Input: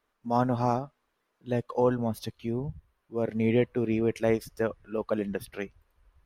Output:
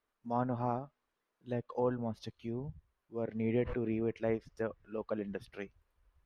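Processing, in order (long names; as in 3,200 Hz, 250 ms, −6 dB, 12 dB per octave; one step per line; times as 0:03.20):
treble cut that deepens with the level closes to 2,400 Hz, closed at −23.5 dBFS
0:03.54–0:04.07: background raised ahead of every attack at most 50 dB per second
level −8 dB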